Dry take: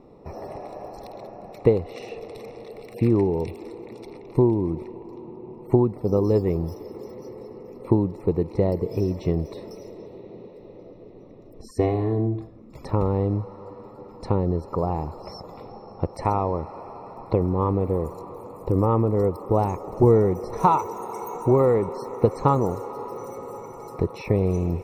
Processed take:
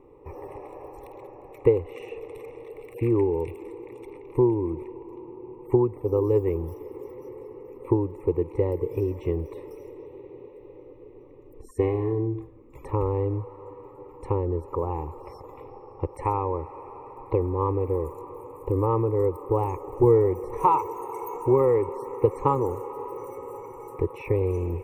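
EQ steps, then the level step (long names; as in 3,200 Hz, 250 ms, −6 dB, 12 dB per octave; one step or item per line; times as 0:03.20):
parametric band 4,000 Hz −8.5 dB 0.56 octaves
phaser with its sweep stopped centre 1,000 Hz, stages 8
0.0 dB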